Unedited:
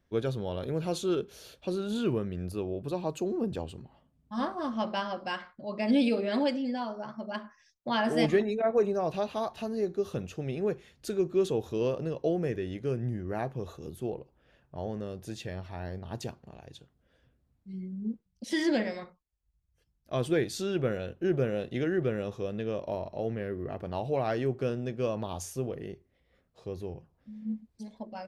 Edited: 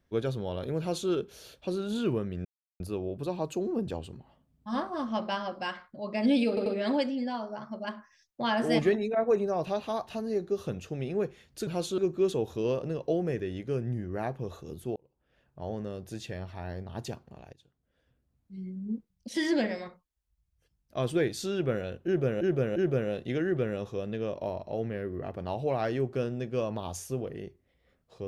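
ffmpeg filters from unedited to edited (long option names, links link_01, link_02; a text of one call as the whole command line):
ffmpeg -i in.wav -filter_complex "[0:a]asplit=10[link_01][link_02][link_03][link_04][link_05][link_06][link_07][link_08][link_09][link_10];[link_01]atrim=end=2.45,asetpts=PTS-STARTPTS,afade=type=out:start_time=2.446:duration=0.004:curve=hsin,apad=pad_dur=0.35[link_11];[link_02]atrim=start=2.45:end=6.222,asetpts=PTS-STARTPTS,afade=type=in:duration=0.004:curve=hsin[link_12];[link_03]atrim=start=6.128:end=6.222[link_13];[link_04]atrim=start=6.128:end=11.142[link_14];[link_05]atrim=start=0.788:end=1.102[link_15];[link_06]atrim=start=11.138:end=14.12,asetpts=PTS-STARTPTS,afade=type=out:start_time=2.978:duration=0.004:curve=hsin[link_16];[link_07]atrim=start=14.12:end=16.69,asetpts=PTS-STARTPTS,afade=type=in:duration=0.75,afade=type=out:start_time=2.566:duration=0.004:curve=hsin:silence=0.177828[link_17];[link_08]atrim=start=16.69:end=21.572,asetpts=PTS-STARTPTS,afade=type=in:duration=1.18:silence=0.177828[link_18];[link_09]atrim=start=21.218:end=21.572[link_19];[link_10]atrim=start=21.218[link_20];[link_11][link_12]concat=n=2:v=0:a=1[link_21];[link_21][link_13]acrossfade=duration=0.004:curve1=hsin:curve2=hsin[link_22];[link_22][link_14]acrossfade=duration=0.004:curve1=hsin:curve2=hsin[link_23];[link_23][link_15]acrossfade=duration=0.004:curve1=hsin:curve2=hsin[link_24];[link_16][link_17][link_18]concat=n=3:v=0:a=1[link_25];[link_24][link_25]acrossfade=duration=0.004:curve1=hsin:curve2=hsin[link_26];[link_26][link_19]acrossfade=duration=0.004:curve1=hsin:curve2=hsin[link_27];[link_27][link_20]acrossfade=duration=0.004:curve1=hsin:curve2=hsin" out.wav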